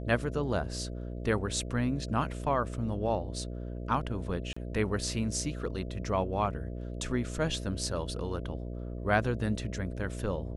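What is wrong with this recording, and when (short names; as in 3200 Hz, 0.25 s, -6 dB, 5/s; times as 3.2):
buzz 60 Hz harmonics 11 -38 dBFS
4.53–4.57 gap 35 ms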